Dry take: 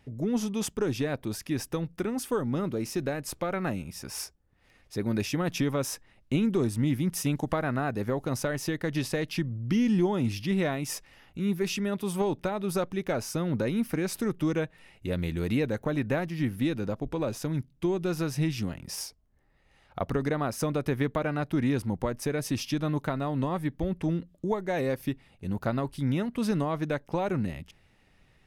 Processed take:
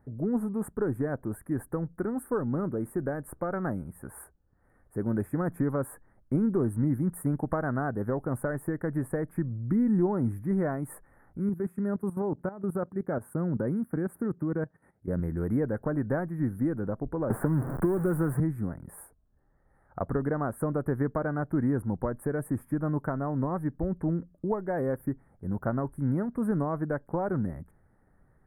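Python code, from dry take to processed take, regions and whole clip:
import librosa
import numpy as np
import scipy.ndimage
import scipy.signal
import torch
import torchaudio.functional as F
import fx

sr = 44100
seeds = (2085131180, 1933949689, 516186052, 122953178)

y = fx.chain(x, sr, fx.highpass(hz=110.0, slope=12),
    fx.low_shelf(hz=230.0, db=7.0),
    fx.level_steps(step_db=14), at=(11.49, 15.2))
y = fx.chain(y, sr, fx.zero_step(step_db=-31.0),
    fx.band_squash(depth_pct=100), at=(17.3, 18.4))
y = scipy.signal.sosfilt(scipy.signal.ellip(3, 1.0, 40, [1600.0, 9200.0], 'bandstop', fs=sr, output='sos'), y)
y = fx.high_shelf(y, sr, hz=3300.0, db=-7.0)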